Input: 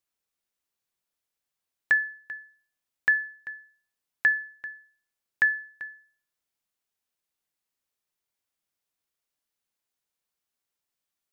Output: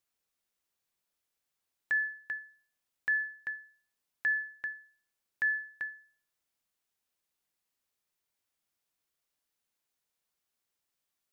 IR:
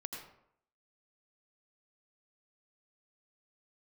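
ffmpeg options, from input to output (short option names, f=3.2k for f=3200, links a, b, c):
-filter_complex "[0:a]alimiter=level_in=0.5dB:limit=-24dB:level=0:latency=1:release=114,volume=-0.5dB,asplit=2[a][b];[1:a]atrim=start_sample=2205,afade=t=out:st=0.14:d=0.01,atrim=end_sample=6615[c];[b][c]afir=irnorm=-1:irlink=0,volume=-17.5dB[d];[a][d]amix=inputs=2:normalize=0"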